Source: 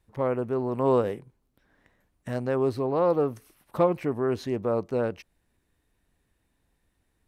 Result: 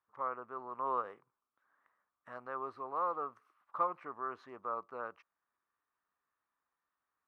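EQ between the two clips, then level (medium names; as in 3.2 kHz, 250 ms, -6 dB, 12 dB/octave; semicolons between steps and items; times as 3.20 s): band-pass filter 1.2 kHz, Q 6.1; +3.0 dB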